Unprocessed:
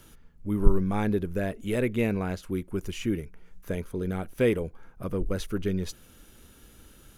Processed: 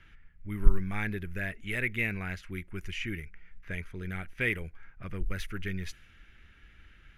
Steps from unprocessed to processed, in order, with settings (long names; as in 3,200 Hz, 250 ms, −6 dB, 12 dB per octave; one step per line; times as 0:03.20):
low-pass that shuts in the quiet parts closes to 2,800 Hz, open at −24.5 dBFS
graphic EQ with 10 bands 125 Hz −4 dB, 250 Hz −9 dB, 500 Hz −12 dB, 1,000 Hz −9 dB, 2,000 Hz +12 dB, 4,000 Hz −5 dB, 8,000 Hz −7 dB